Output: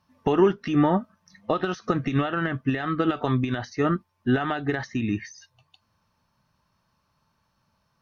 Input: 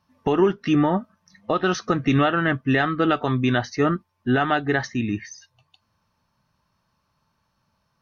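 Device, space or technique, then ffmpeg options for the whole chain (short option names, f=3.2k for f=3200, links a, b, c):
de-esser from a sidechain: -filter_complex "[0:a]asplit=2[a][b];[b]highpass=4.4k,apad=whole_len=353601[c];[a][c]sidechaincompress=threshold=-43dB:ratio=16:attack=4.9:release=83"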